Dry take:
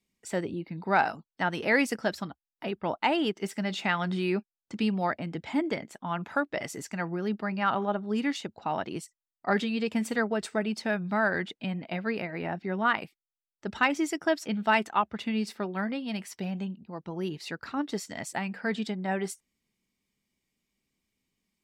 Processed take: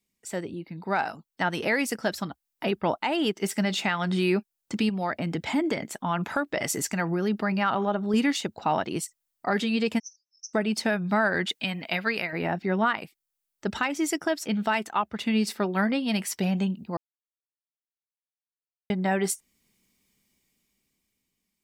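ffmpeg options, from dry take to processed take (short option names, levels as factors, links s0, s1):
-filter_complex "[0:a]asettb=1/sr,asplit=3[s0][s1][s2];[s0]atrim=end=4.894[s3];[s1]atrim=start=4.89:end=8.14,asetpts=PTS-STARTPTS,afade=t=in:d=0.004:c=qsin,afade=t=out:st=3.246:d=0.004:c=qsin,acompressor=threshold=0.0224:ratio=2:attack=3.2:release=140:knee=1:detection=peak[s4];[s2]atrim=start=8.136[s5];[s3][s4]acrossfade=d=0.004:c1=hsin:c2=qsin[s6];[s6][s5]acrossfade=d=0.004:c1=qsin:c2=hsin,asplit=3[s7][s8][s9];[s7]afade=t=out:st=9.98:d=0.02[s10];[s8]asuperpass=centerf=5800:order=8:qfactor=5.9,afade=t=in:st=9.98:d=0.02,afade=t=out:st=10.53:d=0.02[s11];[s9]afade=t=in:st=10.53:d=0.02[s12];[s10][s11][s12]amix=inputs=3:normalize=0,asettb=1/sr,asplit=3[s13][s14][s15];[s13]atrim=end=11.464[s16];[s14]atrim=start=11.46:end=12.33,asetpts=PTS-STARTPTS,afade=t=in:d=0.004:c=qsin,afade=t=out:st=0.866:d=0.004:c=qsin,tiltshelf=f=970:g=-6.5[s17];[s15]atrim=start=12.326[s18];[s16][s17]acrossfade=d=0.004:c1=hsin:c2=qsin[s19];[s19][s18]acrossfade=d=0.004:c1=qsin:c2=hsin,asplit=3[s20][s21][s22];[s20]atrim=end=16.97,asetpts=PTS-STARTPTS,afade=t=out:st=16.966:d=0.004:c=hsin[s23];[s21]atrim=start=16.97:end=18.9,asetpts=PTS-STARTPTS,volume=0[s24];[s22]atrim=start=18.9,asetpts=PTS-STARTPTS,afade=t=in:d=0.004:c=hsin[s25];[s23][s24][s25]concat=n=3:v=0:a=1,highshelf=f=7400:g=9.5,dynaudnorm=f=250:g=11:m=3.35,alimiter=limit=0.237:level=0:latency=1:release=401,volume=0.794"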